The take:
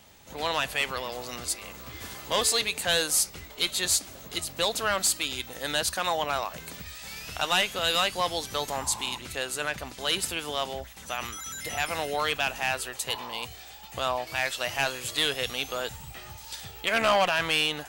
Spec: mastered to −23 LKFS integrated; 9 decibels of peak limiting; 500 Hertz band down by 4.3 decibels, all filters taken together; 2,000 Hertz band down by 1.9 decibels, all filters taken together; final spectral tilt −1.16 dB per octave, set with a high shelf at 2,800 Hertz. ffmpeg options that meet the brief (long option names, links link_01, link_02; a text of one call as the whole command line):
ffmpeg -i in.wav -af "equalizer=frequency=500:width_type=o:gain=-5.5,equalizer=frequency=2000:width_type=o:gain=-7,highshelf=frequency=2800:gain=9,volume=5.5dB,alimiter=limit=-10.5dB:level=0:latency=1" out.wav